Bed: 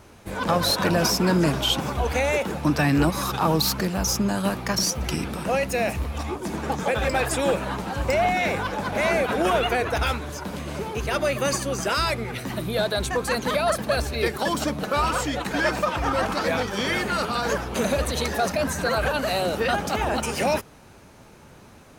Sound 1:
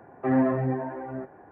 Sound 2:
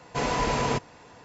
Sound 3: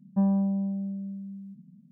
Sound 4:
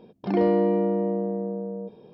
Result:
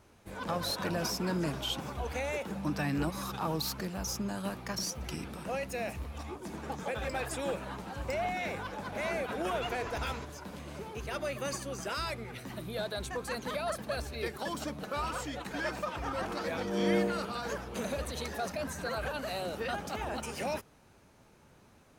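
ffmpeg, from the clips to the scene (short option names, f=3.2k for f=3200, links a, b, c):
-filter_complex "[0:a]volume=-12dB[a];[2:a]acompressor=threshold=-32dB:ratio=6:attack=3.2:release=140:knee=1:detection=peak[b];[4:a]aeval=exprs='val(0)*pow(10,-22*(0.5-0.5*cos(2*PI*0.98*n/s))/20)':c=same[c];[3:a]atrim=end=1.91,asetpts=PTS-STARTPTS,volume=-17dB,afade=t=in:d=0.004:c=hsin,afade=t=out:st=1.906:d=0.004:c=hsin,adelay=2330[d];[b]atrim=end=1.24,asetpts=PTS-STARTPTS,volume=-8.5dB,afade=t=in:d=0.004:c=hsin,afade=t=out:st=1.236:d=0.004:c=hsin,adelay=9470[e];[c]atrim=end=2.13,asetpts=PTS-STARTPTS,volume=-2.5dB,afade=t=in:d=0.004:c=hsin,afade=t=out:st=2.126:d=0.004:c=hsin,adelay=15940[f];[a][d][e][f]amix=inputs=4:normalize=0"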